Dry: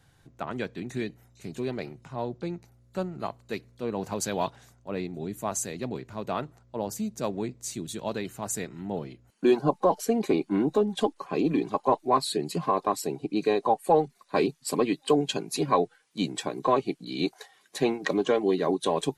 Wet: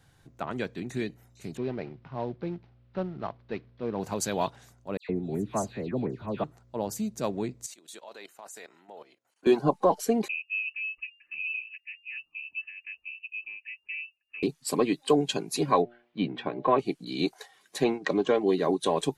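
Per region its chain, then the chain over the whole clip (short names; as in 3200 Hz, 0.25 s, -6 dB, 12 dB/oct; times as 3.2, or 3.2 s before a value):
1.57–4 CVSD 32 kbps + air absorption 310 m
4.97–6.44 HPF 250 Hz 6 dB/oct + tilt -3.5 dB/oct + dispersion lows, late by 0.122 s, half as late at 2300 Hz
7.66–9.47 Chebyshev high-pass 670 Hz + level quantiser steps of 15 dB
10.28–14.43 EQ curve 200 Hz 0 dB, 660 Hz -27 dB, 2600 Hz -26 dB, 4000 Hz +9 dB + tremolo saw down 1.2 Hz, depth 45% + inverted band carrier 2800 Hz
15.82–16.79 LPF 3100 Hz 24 dB/oct + de-hum 119.4 Hz, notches 7
17.84–18.48 expander -34 dBFS + air absorption 59 m
whole clip: dry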